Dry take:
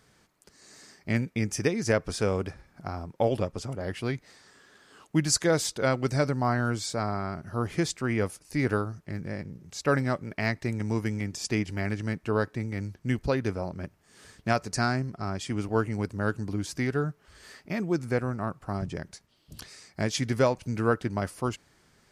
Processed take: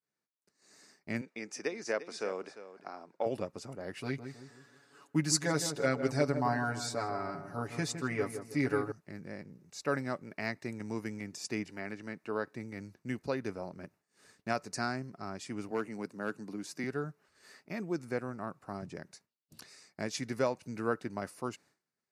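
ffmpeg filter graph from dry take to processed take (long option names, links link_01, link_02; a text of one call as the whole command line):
ffmpeg -i in.wav -filter_complex "[0:a]asettb=1/sr,asplit=3[link_01][link_02][link_03];[link_01]atrim=end=1.214[link_04];[link_02]atrim=start=1.21:end=3.26,asetpts=PTS-STARTPTS,afade=type=in:duration=0.004:curve=qsin,afade=type=out:start_time=2.046:duration=0.004:curve=qsin,highpass=350,lowpass=6500,aecho=1:1:349:0.211,atrim=end_sample=90405[link_05];[link_03]atrim=start=3.256[link_06];[link_04][link_05]acrossfade=duration=0.004:curve1=hsin:curve2=qsin[link_07];[link_07][link_06]acrossfade=duration=0.004:curve1=qsin:curve2=hsin,asettb=1/sr,asplit=3[link_08][link_09][link_10];[link_08]atrim=end=3.964[link_11];[link_09]atrim=start=3.96:end=8.92,asetpts=PTS-STARTPTS,afade=type=in:duration=0.004:curve=qsin,afade=type=out:start_time=4.956:duration=0.004:curve=qsin,aecho=1:1:7.1:0.91,atrim=end_sample=218736,asplit=2[link_12][link_13];[link_13]adelay=160,lowpass=frequency=1200:poles=1,volume=-8dB,asplit=2[link_14][link_15];[link_15]adelay=160,lowpass=frequency=1200:poles=1,volume=0.45,asplit=2[link_16][link_17];[link_17]adelay=160,lowpass=frequency=1200:poles=1,volume=0.45,asplit=2[link_18][link_19];[link_19]adelay=160,lowpass=frequency=1200:poles=1,volume=0.45,asplit=2[link_20][link_21];[link_21]adelay=160,lowpass=frequency=1200:poles=1,volume=0.45[link_22];[link_12][link_14][link_16][link_18][link_20][link_22]amix=inputs=6:normalize=0,atrim=end_sample=218736[link_23];[link_10]atrim=start=8.916[link_24];[link_11][link_23]acrossfade=duration=0.004:curve1=hsin:curve2=qsin[link_25];[link_25][link_24]acrossfade=duration=0.004:curve1=qsin:curve2=hsin,asettb=1/sr,asplit=3[link_26][link_27][link_28];[link_26]atrim=end=11.684[link_29];[link_27]atrim=start=11.68:end=12.47,asetpts=PTS-STARTPTS,afade=type=in:duration=0.004:curve=qsin,afade=type=out:start_time=0.786:duration=0.004:curve=qsin,highpass=frequency=200:poles=1,acrossover=split=4300[link_30][link_31];[link_31]acompressor=threshold=-57dB:ratio=4:attack=1:release=60[link_32];[link_30][link_32]amix=inputs=2:normalize=0[link_33];[link_28]atrim=start=12.466[link_34];[link_29][link_33]acrossfade=duration=0.004:curve1=hsin:curve2=qsin[link_35];[link_35][link_34]acrossfade=duration=0.004:curve1=qsin:curve2=hsin,asettb=1/sr,asplit=3[link_36][link_37][link_38];[link_36]atrim=end=15.714[link_39];[link_37]atrim=start=15.71:end=16.84,asetpts=PTS-STARTPTS,afade=type=in:duration=0.004:curve=qsin,afade=type=out:start_time=1.126:duration=0.004:curve=qsin,highpass=frequency=140:width=0.5412,highpass=frequency=140:width=1.3066,volume=17.5dB,asoftclip=hard,volume=-17.5dB[link_40];[link_38]atrim=start=16.836[link_41];[link_39][link_40]acrossfade=duration=0.004:curve1=hsin:curve2=qsin[link_42];[link_42][link_41]acrossfade=duration=0.004:curve1=qsin:curve2=hsin,highpass=170,bandreject=frequency=3200:width=7.2,agate=range=-33dB:threshold=-50dB:ratio=3:detection=peak,volume=-7dB" out.wav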